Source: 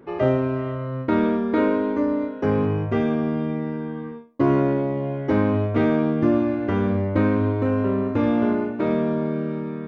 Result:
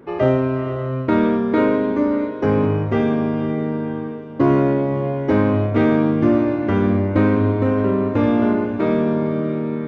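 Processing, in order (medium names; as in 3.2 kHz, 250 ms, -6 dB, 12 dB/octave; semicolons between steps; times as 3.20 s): in parallel at -11.5 dB: overload inside the chain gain 14 dB; on the sum: echo that smears into a reverb 548 ms, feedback 50%, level -13.5 dB; trim +1.5 dB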